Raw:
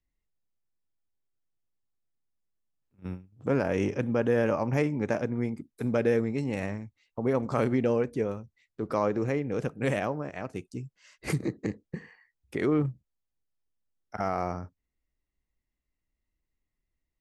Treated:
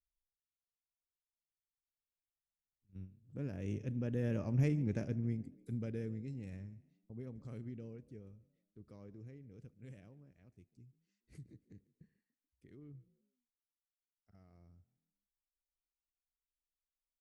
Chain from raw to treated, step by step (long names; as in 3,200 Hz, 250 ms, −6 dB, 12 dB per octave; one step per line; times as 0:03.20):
source passing by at 0:04.71, 11 m/s, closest 6 metres
guitar amp tone stack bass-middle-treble 10-0-1
echo with shifted repeats 143 ms, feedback 41%, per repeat +38 Hz, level −22 dB
level +12 dB